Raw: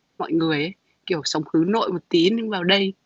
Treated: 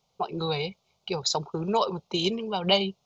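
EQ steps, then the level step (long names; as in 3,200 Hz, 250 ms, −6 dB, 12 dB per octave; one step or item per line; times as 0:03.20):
phaser with its sweep stopped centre 710 Hz, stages 4
0.0 dB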